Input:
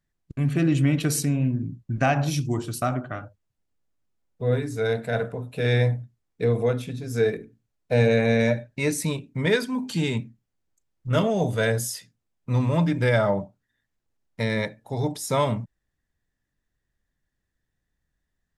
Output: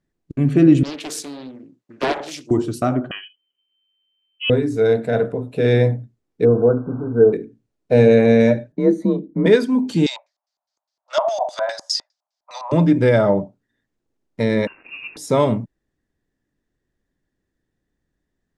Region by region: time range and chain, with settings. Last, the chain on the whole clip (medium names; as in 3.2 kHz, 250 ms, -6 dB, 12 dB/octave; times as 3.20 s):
0.83–2.51 s: high-pass 740 Hz + loudspeaker Doppler distortion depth 0.87 ms
3.11–4.50 s: distance through air 270 m + frequency inversion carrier 3.1 kHz
6.45–7.33 s: one-bit delta coder 64 kbps, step -33 dBFS + brick-wall FIR low-pass 1.6 kHz
8.72–9.46 s: boxcar filter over 17 samples + frequency shift +37 Hz
10.06–12.72 s: steep high-pass 590 Hz 96 dB/octave + resonant high shelf 3.7 kHz +8 dB, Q 1.5 + LFO low-pass square 4.9 Hz 960–4800 Hz
14.67–15.17 s: jump at every zero crossing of -42 dBFS + brick-wall FIR high-pass 470 Hz + frequency inversion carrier 3.3 kHz
whole clip: low-pass 9.2 kHz 12 dB/octave; peaking EQ 330 Hz +12 dB 1.8 oct